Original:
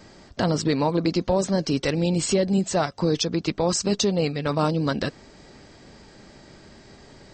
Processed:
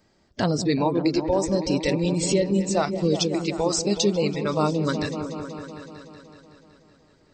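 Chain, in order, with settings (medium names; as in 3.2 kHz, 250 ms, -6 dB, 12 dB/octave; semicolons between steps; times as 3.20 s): spectral noise reduction 15 dB; delay with an opening low-pass 187 ms, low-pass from 400 Hz, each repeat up 1 oct, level -6 dB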